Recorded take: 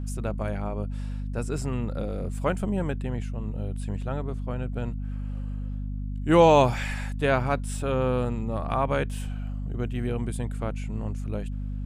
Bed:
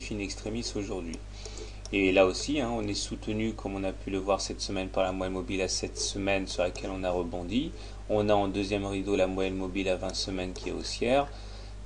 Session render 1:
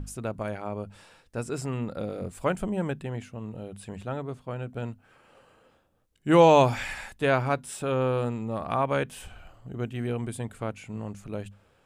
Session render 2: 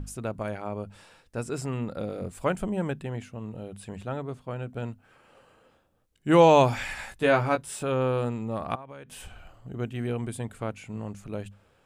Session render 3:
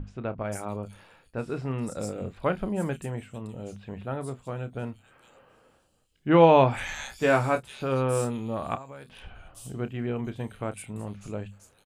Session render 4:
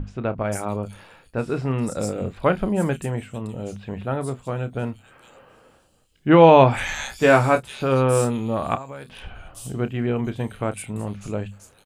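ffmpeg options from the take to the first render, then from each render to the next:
-af "bandreject=f=50:t=h:w=6,bandreject=f=100:t=h:w=6,bandreject=f=150:t=h:w=6,bandreject=f=200:t=h:w=6,bandreject=f=250:t=h:w=6"
-filter_complex "[0:a]asettb=1/sr,asplit=3[s0][s1][s2];[s0]atrim=end=6.974[s3];[s1]atrim=start=6.97:end=7.83,asetpts=PTS-STARTPTS,afade=t=in:d=0.004:c=qsin,afade=t=out:st=0.856:d=0.004:c=qsin,asplit=2[s4][s5];[s5]adelay=18,volume=0.596[s6];[s4][s6]amix=inputs=2:normalize=0,atrim=end_sample=37926[s7];[s2]atrim=start=7.826[s8];[s3][s7]acrossfade=d=0.004:c1=hsin:c2=qsin[s9];[s9][s8]acrossfade=d=0.004:c1=qsin:c2=hsin,asettb=1/sr,asplit=3[s10][s11][s12];[s10]atrim=end=8.754[s13];[s11]atrim=start=8.75:end=9.19,asetpts=PTS-STARTPTS,afade=t=in:d=0.004:c=qsin,afade=t=out:st=0.436:d=0.004:c=qsin,acompressor=threshold=0.0112:ratio=10:attack=3.2:release=140:knee=1:detection=peak[s14];[s12]atrim=start=9.186[s15];[s13][s14]acrossfade=d=0.004:c1=hsin:c2=qsin[s16];[s16][s15]acrossfade=d=0.004:c1=qsin:c2=hsin"
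-filter_complex "[0:a]asplit=2[s0][s1];[s1]adelay=30,volume=0.251[s2];[s0][s2]amix=inputs=2:normalize=0,acrossover=split=3800[s3][s4];[s4]adelay=450[s5];[s3][s5]amix=inputs=2:normalize=0"
-af "volume=2.24,alimiter=limit=0.794:level=0:latency=1"

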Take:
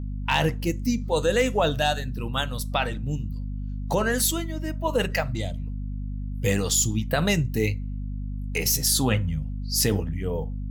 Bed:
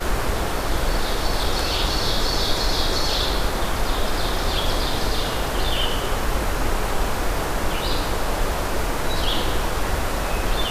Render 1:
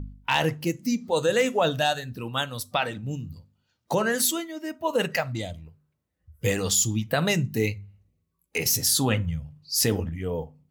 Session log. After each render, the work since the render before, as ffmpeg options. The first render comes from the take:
-af "bandreject=f=50:t=h:w=4,bandreject=f=100:t=h:w=4,bandreject=f=150:t=h:w=4,bandreject=f=200:t=h:w=4,bandreject=f=250:t=h:w=4"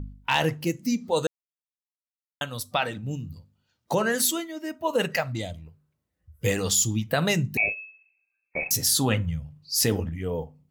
-filter_complex "[0:a]asettb=1/sr,asplit=3[s0][s1][s2];[s0]atrim=end=7.574[s3];[s1]atrim=start=7.57:end=8.71,asetpts=PTS-STARTPTS,afade=t=in:d=0.004:c=qsin,afade=t=out:st=1.136:d=0.004:c=qsin,lowpass=f=2300:t=q:w=0.5098,lowpass=f=2300:t=q:w=0.6013,lowpass=f=2300:t=q:w=0.9,lowpass=f=2300:t=q:w=2.563,afreqshift=-2700[s4];[s2]atrim=start=8.706[s5];[s3][s4]acrossfade=d=0.004:c1=hsin:c2=qsin[s6];[s6][s5]acrossfade=d=0.004:c1=qsin:c2=hsin,asplit=3[s7][s8][s9];[s7]atrim=end=1.27,asetpts=PTS-STARTPTS,afade=t=out:st=1.266:d=0.004:c=hsin[s10];[s8]atrim=start=1.27:end=2.41,asetpts=PTS-STARTPTS,volume=0[s11];[s9]atrim=start=2.41,asetpts=PTS-STARTPTS,afade=t=in:d=0.004:c=hsin[s12];[s10][s11][s12]concat=n=3:v=0:a=1"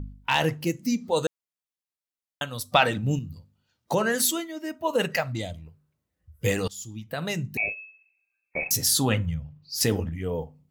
-filter_complex "[0:a]asettb=1/sr,asplit=3[s0][s1][s2];[s0]atrim=end=2.724[s3];[s1]atrim=start=2.72:end=3.19,asetpts=PTS-STARTPTS,afade=t=in:d=0.004:c=qsin,afade=t=out:st=0.466:d=0.004:c=qsin,acontrast=65[s4];[s2]atrim=start=3.186[s5];[s3][s4]acrossfade=d=0.004:c1=hsin:c2=qsin[s6];[s6][s5]acrossfade=d=0.004:c1=qsin:c2=hsin,asettb=1/sr,asplit=3[s7][s8][s9];[s7]atrim=end=9.344[s10];[s8]atrim=start=9.34:end=9.81,asetpts=PTS-STARTPTS,afade=t=in:d=0.004:c=qsin,afade=t=out:st=0.466:d=0.004:c=qsin,equalizer=f=9400:w=0.67:g=-11[s11];[s9]atrim=start=9.806[s12];[s10][s11]acrossfade=d=0.004:c1=hsin:c2=qsin[s13];[s13][s12]acrossfade=d=0.004:c1=qsin:c2=hsin,asplit=2[s14][s15];[s14]atrim=end=6.68,asetpts=PTS-STARTPTS,afade=t=out:st=6.676:d=0.004:c=hsin:silence=0.0668344[s16];[s15]atrim=start=6.68,asetpts=PTS-STARTPTS,afade=t=in:d=2.06:c=qsin:silence=0.0668344[s17];[s16][s17]concat=n=2:v=0:a=1"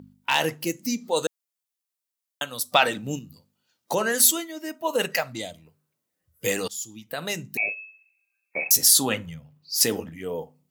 -af "highpass=230,highshelf=f=5000:g=8.5"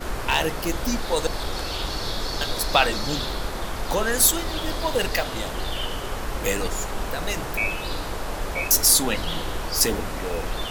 -filter_complex "[1:a]volume=0.473[s0];[0:a][s0]amix=inputs=2:normalize=0"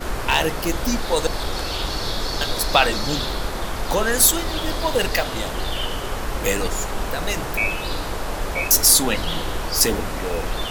-af "volume=1.41,alimiter=limit=0.794:level=0:latency=1"

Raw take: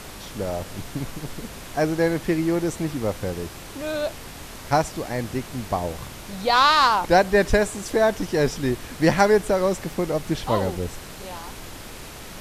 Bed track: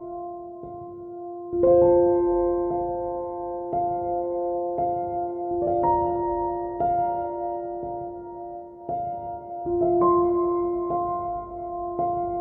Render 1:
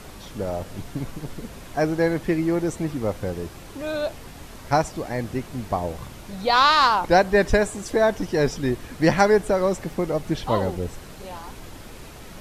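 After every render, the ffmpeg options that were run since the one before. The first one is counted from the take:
-af "afftdn=nr=6:nf=-39"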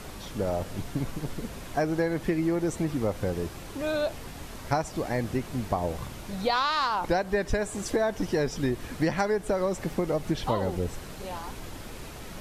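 -af "acompressor=threshold=0.0794:ratio=10"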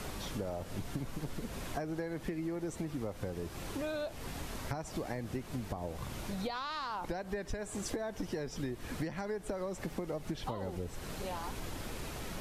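-filter_complex "[0:a]acrossover=split=350[s0][s1];[s1]alimiter=limit=0.0944:level=0:latency=1:release=167[s2];[s0][s2]amix=inputs=2:normalize=0,acompressor=threshold=0.0178:ratio=6"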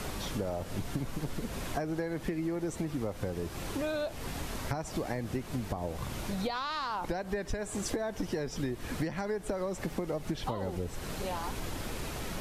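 -af "volume=1.58"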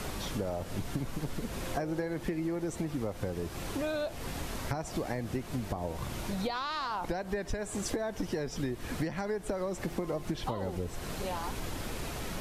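-filter_complex "[1:a]volume=0.0299[s0];[0:a][s0]amix=inputs=2:normalize=0"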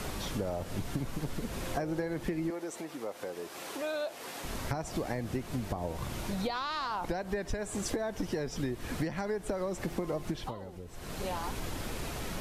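-filter_complex "[0:a]asettb=1/sr,asplit=3[s0][s1][s2];[s0]atrim=end=2.504[s3];[s1]atrim=start=2.5:end=4.44,asetpts=PTS-STARTPTS,afade=t=in:d=0.004:c=qsin,afade=t=out:st=1.936:d=0.004:c=qsin,highpass=400[s4];[s2]atrim=start=4.436[s5];[s3][s4]acrossfade=d=0.004:c1=hsin:c2=qsin[s6];[s6][s5]acrossfade=d=0.004:c1=qsin:c2=hsin,asplit=3[s7][s8][s9];[s7]atrim=end=10.65,asetpts=PTS-STARTPTS,afade=t=out:st=10.26:d=0.39:silence=0.316228[s10];[s8]atrim=start=10.65:end=10.86,asetpts=PTS-STARTPTS,volume=0.316[s11];[s9]atrim=start=10.86,asetpts=PTS-STARTPTS,afade=t=in:d=0.39:silence=0.316228[s12];[s10][s11][s12]concat=n=3:v=0:a=1"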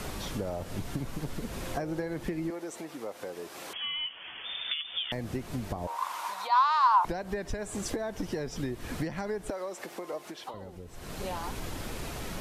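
-filter_complex "[0:a]asettb=1/sr,asplit=3[s0][s1][s2];[s0]atrim=end=3.734[s3];[s1]atrim=start=3.73:end=5.12,asetpts=PTS-STARTPTS,afade=t=in:d=0.004:c=qsin,afade=t=out:st=1.386:d=0.004:c=qsin,lowpass=f=3100:t=q:w=0.5098,lowpass=f=3100:t=q:w=0.6013,lowpass=f=3100:t=q:w=0.9,lowpass=f=3100:t=q:w=2.563,afreqshift=-3600[s4];[s2]atrim=start=5.116[s5];[s3][s4]acrossfade=d=0.004:c1=hsin:c2=qsin[s6];[s6][s5]acrossfade=d=0.004:c1=qsin:c2=hsin,asettb=1/sr,asplit=3[s7][s8][s9];[s7]atrim=end=5.874[s10];[s8]atrim=start=5.87:end=7.05,asetpts=PTS-STARTPTS,afade=t=in:d=0.004:c=qsin,afade=t=out:st=1.176:d=0.004:c=qsin,highpass=f=1000:t=q:w=7.5[s11];[s9]atrim=start=7.046[s12];[s10][s11]acrossfade=d=0.004:c1=hsin:c2=qsin[s13];[s13][s12]acrossfade=d=0.004:c1=qsin:c2=hsin,asettb=1/sr,asplit=3[s14][s15][s16];[s14]atrim=end=9.504[s17];[s15]atrim=start=9.5:end=10.54,asetpts=PTS-STARTPTS,afade=t=in:d=0.004:c=qsin,afade=t=out:st=1.036:d=0.004:c=qsin,highpass=450[s18];[s16]atrim=start=10.536[s19];[s17][s18]acrossfade=d=0.004:c1=hsin:c2=qsin[s20];[s20][s19]acrossfade=d=0.004:c1=qsin:c2=hsin"

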